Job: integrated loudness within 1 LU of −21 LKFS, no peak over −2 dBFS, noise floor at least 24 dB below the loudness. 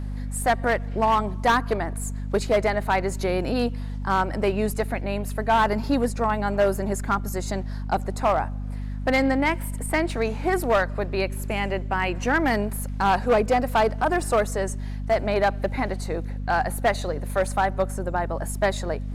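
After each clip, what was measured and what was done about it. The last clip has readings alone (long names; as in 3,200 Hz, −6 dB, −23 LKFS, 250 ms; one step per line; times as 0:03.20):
share of clipped samples 1.2%; peaks flattened at −14.0 dBFS; mains hum 50 Hz; hum harmonics up to 250 Hz; level of the hum −28 dBFS; integrated loudness −24.5 LKFS; sample peak −14.0 dBFS; target loudness −21.0 LKFS
→ clipped peaks rebuilt −14 dBFS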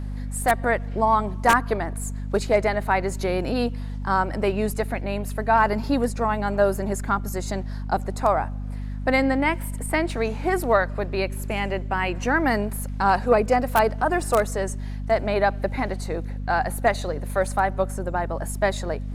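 share of clipped samples 0.0%; mains hum 50 Hz; hum harmonics up to 250 Hz; level of the hum −28 dBFS
→ mains-hum notches 50/100/150/200/250 Hz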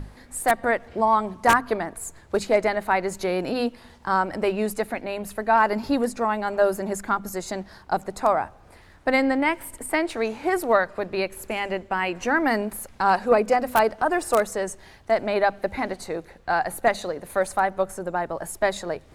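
mains hum none found; integrated loudness −24.5 LKFS; sample peak −4.5 dBFS; target loudness −21.0 LKFS
→ level +3.5 dB
brickwall limiter −2 dBFS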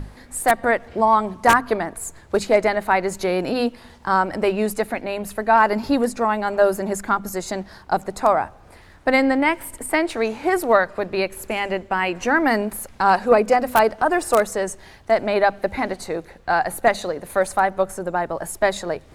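integrated loudness −21.0 LKFS; sample peak −2.0 dBFS; background noise floor −47 dBFS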